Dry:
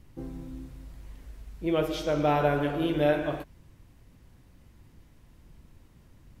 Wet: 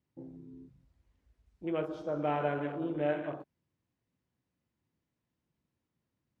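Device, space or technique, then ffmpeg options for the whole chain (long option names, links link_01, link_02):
over-cleaned archive recording: -filter_complex "[0:a]asettb=1/sr,asplit=3[link_01][link_02][link_03];[link_01]atrim=end=1.464[link_04];[link_02]atrim=start=1.46:end=2.84,asetpts=PTS-STARTPTS,afade=type=in:duration=0.004:curve=qsin,afade=type=out:start_time=1.376:duration=0.004:curve=qsin,highshelf=frequency=5100:gain=4.5[link_05];[link_03]atrim=start=2.836[link_06];[link_04][link_05]acrossfade=duration=0.004:curve1=hsin:curve2=qsin[link_07];[link_07][link_06]acrossfade=duration=0.004:curve1=qsin:curve2=hsin,highpass=130,lowpass=7600,afwtdn=0.0141,volume=-7dB"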